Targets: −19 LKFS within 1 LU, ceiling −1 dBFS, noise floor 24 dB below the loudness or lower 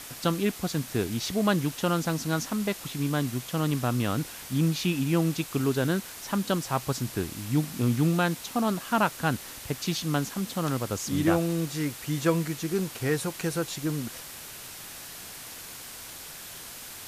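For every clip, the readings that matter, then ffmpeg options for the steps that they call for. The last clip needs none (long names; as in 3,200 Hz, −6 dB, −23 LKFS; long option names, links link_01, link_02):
background noise floor −43 dBFS; target noise floor −52 dBFS; integrated loudness −28.0 LKFS; sample peak −10.5 dBFS; target loudness −19.0 LKFS
→ -af "afftdn=noise_reduction=9:noise_floor=-43"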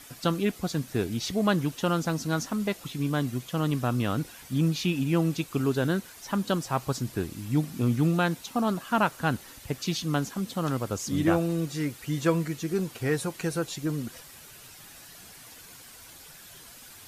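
background noise floor −49 dBFS; target noise floor −53 dBFS
→ -af "afftdn=noise_reduction=6:noise_floor=-49"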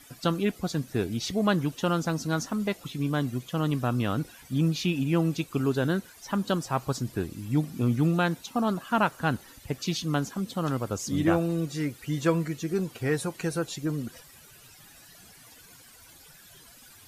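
background noise floor −53 dBFS; integrated loudness −28.5 LKFS; sample peak −11.0 dBFS; target loudness −19.0 LKFS
→ -af "volume=9.5dB"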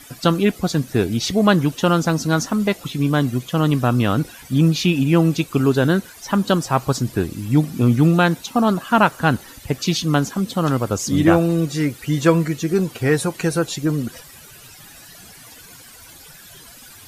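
integrated loudness −19.0 LKFS; sample peak −1.5 dBFS; background noise floor −43 dBFS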